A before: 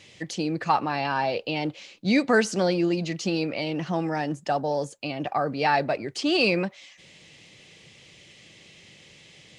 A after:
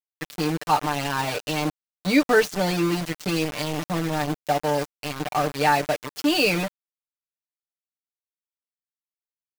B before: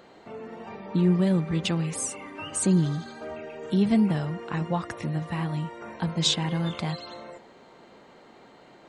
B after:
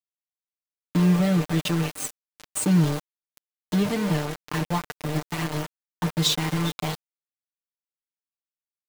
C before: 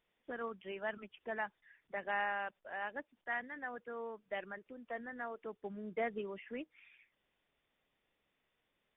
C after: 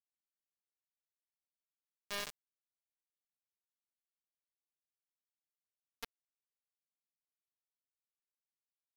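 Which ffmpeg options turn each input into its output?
-af "aeval=exprs='val(0)*gte(abs(val(0)),0.0473)':c=same,aecho=1:1:6.7:0.7"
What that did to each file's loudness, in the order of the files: +1.5, +1.5, -2.5 LU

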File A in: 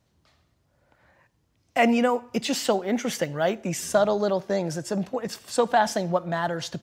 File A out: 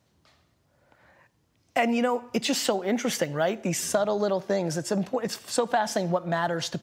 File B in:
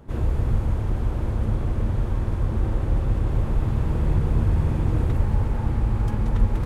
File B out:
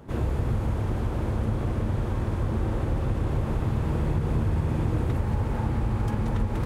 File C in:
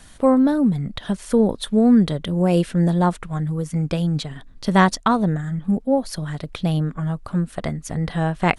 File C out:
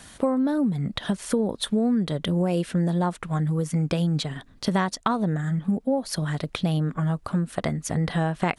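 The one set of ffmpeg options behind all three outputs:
-af "highpass=f=100:p=1,acompressor=threshold=-23dB:ratio=6,volume=2.5dB"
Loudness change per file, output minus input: -1.5, -3.0, -5.0 LU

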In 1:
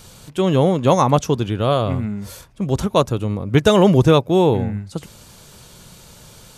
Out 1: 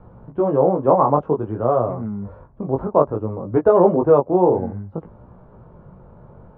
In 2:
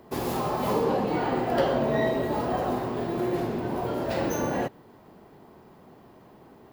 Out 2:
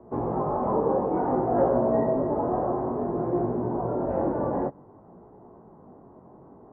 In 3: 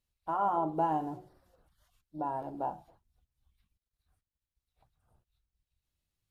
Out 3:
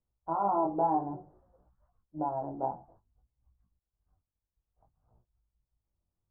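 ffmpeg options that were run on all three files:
-filter_complex "[0:a]lowpass=f=1.1k:w=0.5412,lowpass=f=1.1k:w=1.3066,acrossover=split=290[a][b];[a]acompressor=threshold=-31dB:ratio=6[c];[c][b]amix=inputs=2:normalize=0,flanger=delay=16.5:depth=6:speed=0.56,volume=5dB"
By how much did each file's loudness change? -1.0, +1.0, +1.5 LU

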